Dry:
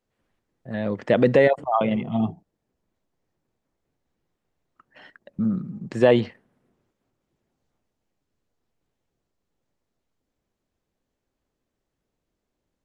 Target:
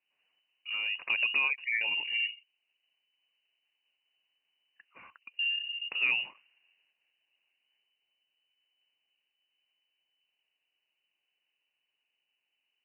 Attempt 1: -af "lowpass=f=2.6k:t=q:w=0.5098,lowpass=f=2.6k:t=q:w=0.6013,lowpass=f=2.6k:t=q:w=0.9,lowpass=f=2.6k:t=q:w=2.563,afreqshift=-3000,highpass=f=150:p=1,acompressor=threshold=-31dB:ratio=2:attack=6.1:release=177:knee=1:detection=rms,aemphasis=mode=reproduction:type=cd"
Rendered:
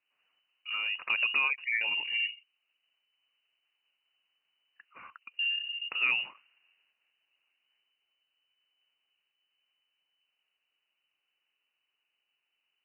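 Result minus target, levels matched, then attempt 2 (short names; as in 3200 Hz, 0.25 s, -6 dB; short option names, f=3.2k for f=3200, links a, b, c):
1000 Hz band +4.0 dB
-af "lowpass=f=2.6k:t=q:w=0.5098,lowpass=f=2.6k:t=q:w=0.6013,lowpass=f=2.6k:t=q:w=0.9,lowpass=f=2.6k:t=q:w=2.563,afreqshift=-3000,highpass=f=150:p=1,equalizer=f=1.3k:t=o:w=0.42:g=-10.5,acompressor=threshold=-31dB:ratio=2:attack=6.1:release=177:knee=1:detection=rms,aemphasis=mode=reproduction:type=cd"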